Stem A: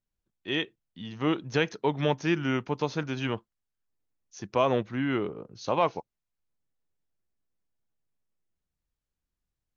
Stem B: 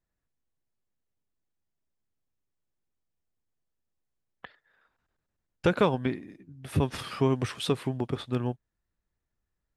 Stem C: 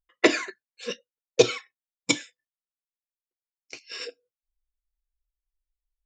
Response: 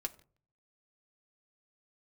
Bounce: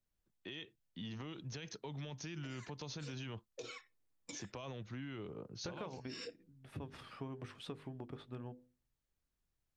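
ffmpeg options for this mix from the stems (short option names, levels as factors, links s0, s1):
-filter_complex "[0:a]volume=0.891[s0];[1:a]highshelf=f=5300:g=-11,bandreject=f=50:t=h:w=6,bandreject=f=100:t=h:w=6,bandreject=f=150:t=h:w=6,bandreject=f=200:t=h:w=6,bandreject=f=250:t=h:w=6,bandreject=f=300:t=h:w=6,bandreject=f=350:t=h:w=6,bandreject=f=400:t=h:w=6,bandreject=f=450:t=h:w=6,bandreject=f=500:t=h:w=6,volume=0.168,asplit=2[s1][s2];[s2]volume=0.237[s3];[2:a]acompressor=threshold=0.02:ratio=2,alimiter=level_in=1.68:limit=0.0631:level=0:latency=1:release=42,volume=0.596,adelay=2200,volume=0.422,asplit=2[s4][s5];[s5]volume=0.15[s6];[s0][s4]amix=inputs=2:normalize=0,acrossover=split=140|3000[s7][s8][s9];[s8]acompressor=threshold=0.00794:ratio=2.5[s10];[s7][s10][s9]amix=inputs=3:normalize=0,alimiter=level_in=3.55:limit=0.0631:level=0:latency=1:release=50,volume=0.282,volume=1[s11];[3:a]atrim=start_sample=2205[s12];[s3][s6]amix=inputs=2:normalize=0[s13];[s13][s12]afir=irnorm=-1:irlink=0[s14];[s1][s11][s14]amix=inputs=3:normalize=0,acompressor=threshold=0.00891:ratio=6"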